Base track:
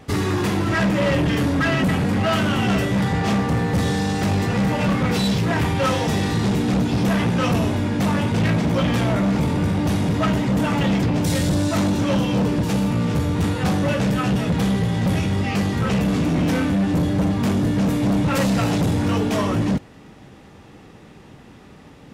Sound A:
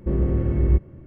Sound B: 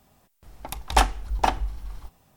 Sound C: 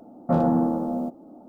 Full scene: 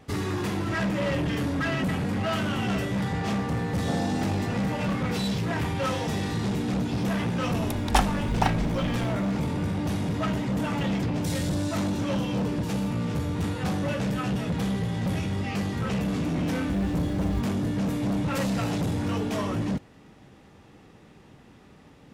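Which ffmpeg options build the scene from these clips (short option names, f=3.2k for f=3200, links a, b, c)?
-filter_complex "[0:a]volume=-7.5dB[a];[3:a]acontrast=37[b];[1:a]acrusher=bits=6:mode=log:mix=0:aa=0.000001[c];[b]atrim=end=1.48,asetpts=PTS-STARTPTS,volume=-15dB,afade=t=in:d=0.004:c=hsin,afade=t=out:st=1.476:d=0.004:c=hsin,adelay=3580[d];[2:a]atrim=end=2.36,asetpts=PTS-STARTPTS,volume=-3dB,afade=t=in:d=0.004:c=hsin,afade=t=out:st=2.356:d=0.004:c=hsin,adelay=307818S[e];[c]atrim=end=1.06,asetpts=PTS-STARTPTS,volume=-13dB,afade=t=in:d=0.004:c=hsin,afade=t=out:st=1.056:d=0.004:c=hsin,adelay=16630[f];[a][d][e][f]amix=inputs=4:normalize=0"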